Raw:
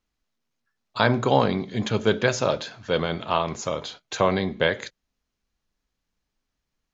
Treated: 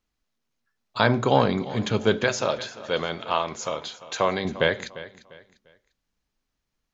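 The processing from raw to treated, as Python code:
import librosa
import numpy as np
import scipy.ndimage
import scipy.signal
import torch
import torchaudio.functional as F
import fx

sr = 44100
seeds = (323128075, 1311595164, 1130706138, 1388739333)

y = fx.low_shelf(x, sr, hz=290.0, db=-9.5, at=(2.24, 4.45))
y = fx.echo_feedback(y, sr, ms=348, feedback_pct=32, wet_db=-16.5)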